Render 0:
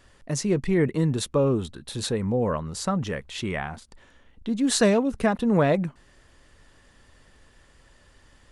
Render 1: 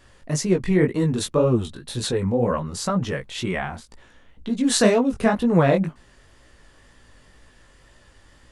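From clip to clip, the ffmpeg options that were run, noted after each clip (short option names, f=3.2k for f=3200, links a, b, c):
-af "flanger=delay=16:depth=6.1:speed=2,volume=6dB"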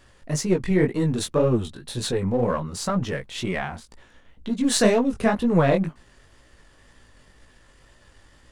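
-af "aeval=exprs='if(lt(val(0),0),0.708*val(0),val(0))':c=same"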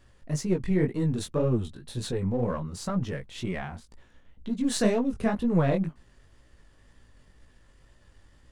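-af "lowshelf=f=280:g=7.5,volume=-8.5dB"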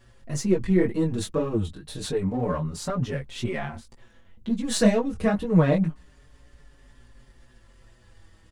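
-filter_complex "[0:a]asplit=2[a][b];[b]adelay=5.4,afreqshift=-0.27[c];[a][c]amix=inputs=2:normalize=1,volume=6.5dB"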